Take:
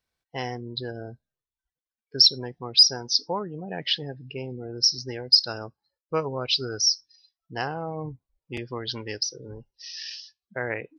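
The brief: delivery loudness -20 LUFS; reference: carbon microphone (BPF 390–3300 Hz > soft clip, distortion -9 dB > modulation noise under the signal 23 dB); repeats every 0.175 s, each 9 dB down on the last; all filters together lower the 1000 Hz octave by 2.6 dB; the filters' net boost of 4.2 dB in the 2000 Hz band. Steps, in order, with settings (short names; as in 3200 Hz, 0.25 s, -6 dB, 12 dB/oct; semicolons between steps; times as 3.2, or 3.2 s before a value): BPF 390–3300 Hz; bell 1000 Hz -5 dB; bell 2000 Hz +7.5 dB; feedback echo 0.175 s, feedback 35%, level -9 dB; soft clip -25 dBFS; modulation noise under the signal 23 dB; gain +14 dB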